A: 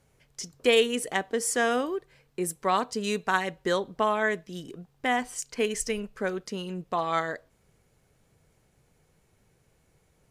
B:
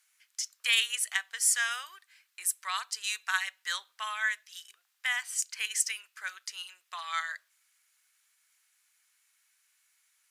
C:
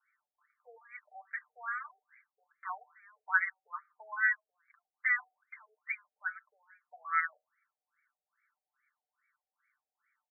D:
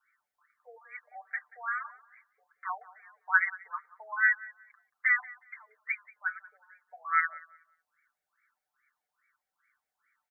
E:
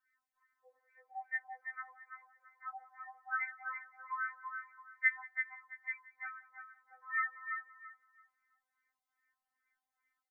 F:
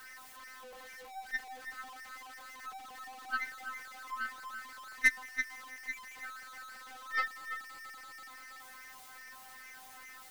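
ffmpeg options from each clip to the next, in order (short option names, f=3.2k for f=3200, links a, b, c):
-af "highpass=f=1.4k:w=0.5412,highpass=f=1.4k:w=1.3066,highshelf=f=5.1k:g=6"
-af "aecho=1:1:6.7:0.85,afftfilt=real='re*between(b*sr/1024,560*pow(1700/560,0.5+0.5*sin(2*PI*2.4*pts/sr))/1.41,560*pow(1700/560,0.5+0.5*sin(2*PI*2.4*pts/sr))*1.41)':imag='im*between(b*sr/1024,560*pow(1700/560,0.5+0.5*sin(2*PI*2.4*pts/sr))/1.41,560*pow(1700/560,0.5+0.5*sin(2*PI*2.4*pts/sr))*1.41)':win_size=1024:overlap=0.75"
-filter_complex "[0:a]asplit=2[a][b];[b]adelay=183,lowpass=f=1.7k:p=1,volume=-18dB,asplit=2[c][d];[d]adelay=183,lowpass=f=1.7k:p=1,volume=0.3,asplit=2[e][f];[f]adelay=183,lowpass=f=1.7k:p=1,volume=0.3[g];[a][c][e][g]amix=inputs=4:normalize=0,volume=4dB"
-filter_complex "[0:a]asplit=2[a][b];[b]adelay=334,lowpass=f=2k:p=1,volume=-4dB,asplit=2[c][d];[d]adelay=334,lowpass=f=2k:p=1,volume=0.29,asplit=2[e][f];[f]adelay=334,lowpass=f=2k:p=1,volume=0.29,asplit=2[g][h];[h]adelay=334,lowpass=f=2k:p=1,volume=0.29[i];[a][c][e][g][i]amix=inputs=5:normalize=0,afftfilt=real='re*3.46*eq(mod(b,12),0)':imag='im*3.46*eq(mod(b,12),0)':win_size=2048:overlap=0.75,volume=-4dB"
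-af "aeval=exprs='val(0)+0.5*0.0188*sgn(val(0))':c=same,aeval=exprs='0.15*(cos(1*acos(clip(val(0)/0.15,-1,1)))-cos(1*PI/2))+0.00841*(cos(4*acos(clip(val(0)/0.15,-1,1)))-cos(4*PI/2))+0.0168*(cos(7*acos(clip(val(0)/0.15,-1,1)))-cos(7*PI/2))':c=same,volume=2.5dB"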